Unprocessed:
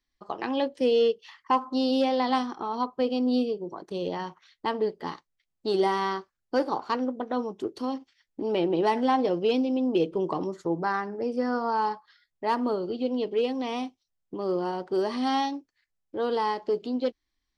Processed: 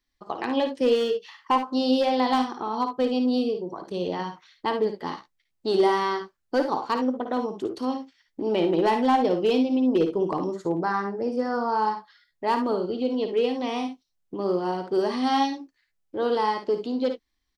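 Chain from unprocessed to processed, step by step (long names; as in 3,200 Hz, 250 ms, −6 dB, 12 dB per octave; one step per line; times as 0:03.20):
0:09.80–0:11.88: dynamic equaliser 2,500 Hz, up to −4 dB, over −46 dBFS, Q 0.99
hard clipping −17.5 dBFS, distortion −27 dB
ambience of single reflections 55 ms −8.5 dB, 70 ms −12 dB
level +2 dB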